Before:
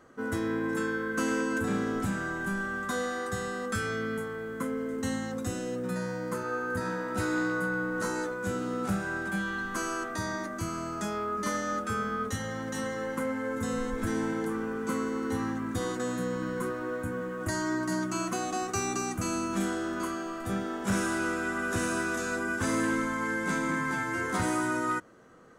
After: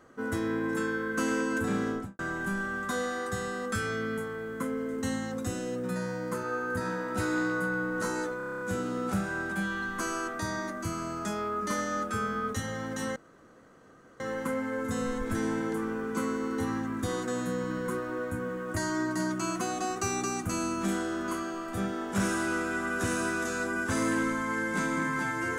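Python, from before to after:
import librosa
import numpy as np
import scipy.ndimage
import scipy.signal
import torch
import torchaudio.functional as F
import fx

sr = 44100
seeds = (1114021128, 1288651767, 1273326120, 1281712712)

y = fx.studio_fade_out(x, sr, start_s=1.87, length_s=0.32)
y = fx.edit(y, sr, fx.stutter(start_s=8.37, slice_s=0.03, count=9),
    fx.insert_room_tone(at_s=12.92, length_s=1.04), tone=tone)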